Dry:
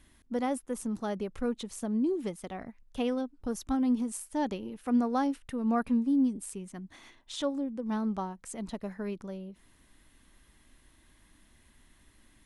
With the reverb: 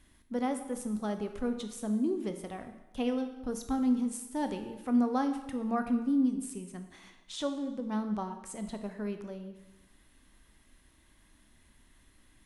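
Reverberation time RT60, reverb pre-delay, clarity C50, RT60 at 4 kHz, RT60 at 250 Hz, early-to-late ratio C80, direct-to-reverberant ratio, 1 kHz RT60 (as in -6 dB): 0.95 s, 9 ms, 9.0 dB, 0.95 s, 1.0 s, 11.0 dB, 7.0 dB, 0.95 s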